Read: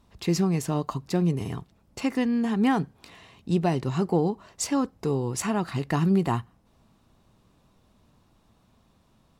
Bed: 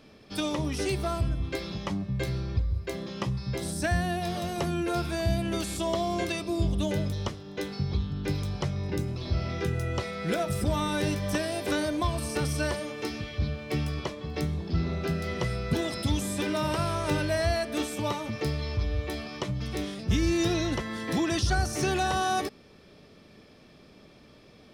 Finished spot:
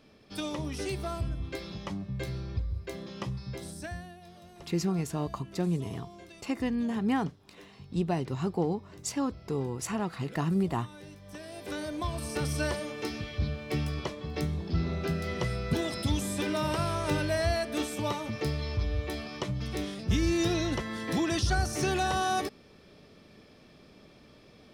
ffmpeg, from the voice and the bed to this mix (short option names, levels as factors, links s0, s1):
-filter_complex "[0:a]adelay=4450,volume=0.531[s0];[1:a]volume=4.73,afade=t=out:st=3.33:d=0.82:silence=0.177828,afade=t=in:st=11.25:d=1.35:silence=0.11885[s1];[s0][s1]amix=inputs=2:normalize=0"